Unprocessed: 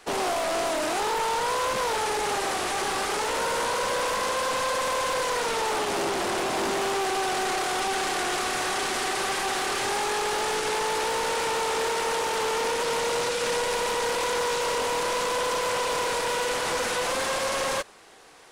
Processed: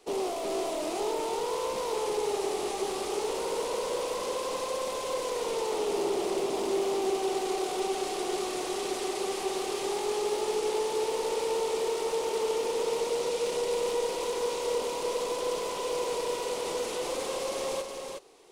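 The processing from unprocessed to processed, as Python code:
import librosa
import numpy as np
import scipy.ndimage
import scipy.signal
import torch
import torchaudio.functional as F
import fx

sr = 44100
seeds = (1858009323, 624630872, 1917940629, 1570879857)

y = fx.graphic_eq_15(x, sr, hz=(100, 400, 1600), db=(-7, 10, -12))
y = y + 10.0 ** (-5.0 / 20.0) * np.pad(y, (int(366 * sr / 1000.0), 0))[:len(y)]
y = y * 10.0 ** (-8.0 / 20.0)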